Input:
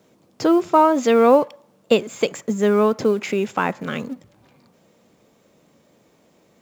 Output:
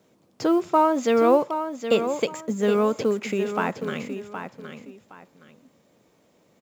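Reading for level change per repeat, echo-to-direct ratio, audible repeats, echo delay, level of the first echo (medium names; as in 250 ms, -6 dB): -12.0 dB, -8.5 dB, 2, 767 ms, -9.0 dB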